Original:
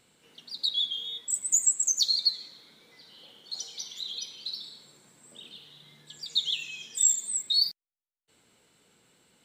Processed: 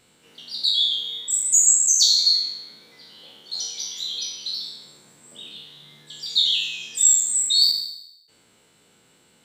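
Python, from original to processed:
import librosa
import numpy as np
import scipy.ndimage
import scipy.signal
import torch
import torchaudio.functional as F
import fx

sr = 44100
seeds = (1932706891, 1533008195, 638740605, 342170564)

y = fx.spec_trails(x, sr, decay_s=0.84)
y = y * librosa.db_to_amplitude(3.5)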